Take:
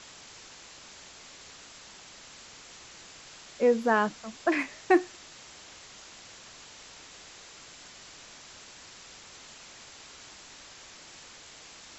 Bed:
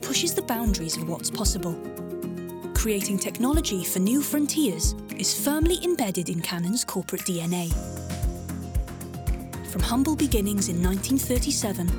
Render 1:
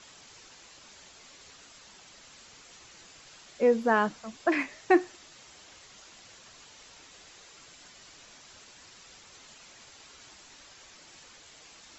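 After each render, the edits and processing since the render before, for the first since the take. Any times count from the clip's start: noise reduction 6 dB, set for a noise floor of -50 dBFS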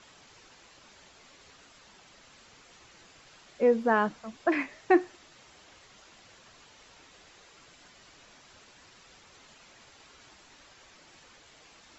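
treble shelf 4.6 kHz -10 dB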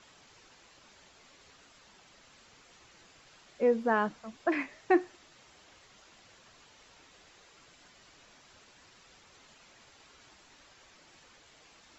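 trim -3 dB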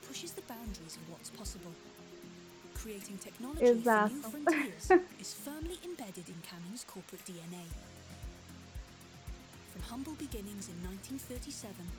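add bed -20 dB

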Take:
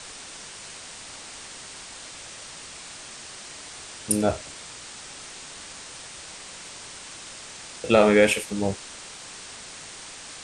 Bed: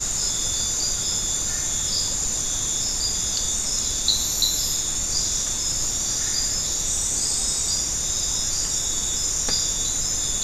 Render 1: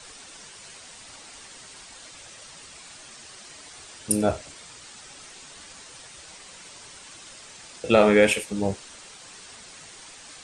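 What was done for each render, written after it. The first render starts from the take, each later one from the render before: noise reduction 7 dB, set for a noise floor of -42 dBFS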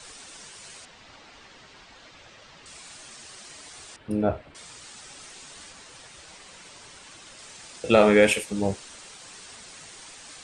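0.85–2.66 s: distance through air 170 m; 3.96–4.55 s: distance through air 470 m; 5.70–7.39 s: treble shelf 5.6 kHz -6 dB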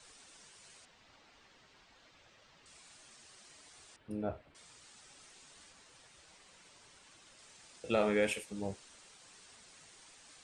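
trim -13.5 dB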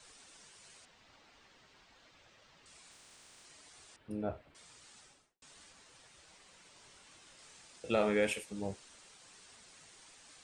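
2.90–3.43 s: spectral peaks clipped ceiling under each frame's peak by 26 dB; 4.98–5.42 s: studio fade out; 6.74–7.62 s: doubling 23 ms -6 dB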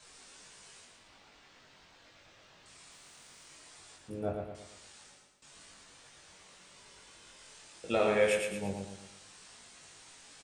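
doubling 21 ms -2.5 dB; feedback delay 114 ms, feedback 44%, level -4.5 dB

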